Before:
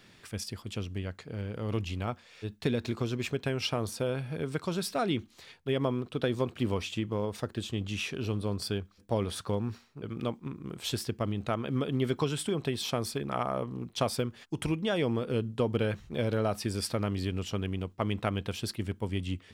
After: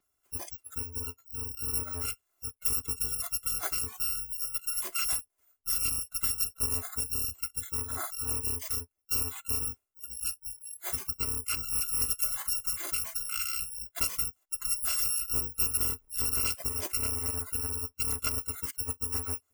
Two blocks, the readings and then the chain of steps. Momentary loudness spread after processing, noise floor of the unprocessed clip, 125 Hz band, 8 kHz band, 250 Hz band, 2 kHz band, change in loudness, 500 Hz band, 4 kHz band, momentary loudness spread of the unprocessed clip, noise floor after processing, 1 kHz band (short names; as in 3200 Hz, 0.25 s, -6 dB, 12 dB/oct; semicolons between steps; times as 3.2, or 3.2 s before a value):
8 LU, -58 dBFS, -10.5 dB, +13.5 dB, -16.5 dB, -2.5 dB, +3.0 dB, -16.5 dB, +0.5 dB, 8 LU, -78 dBFS, -7.0 dB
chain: FFT order left unsorted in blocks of 256 samples; fifteen-band EQ 400 Hz +7 dB, 1000 Hz +5 dB, 4000 Hz -9 dB; spectral noise reduction 21 dB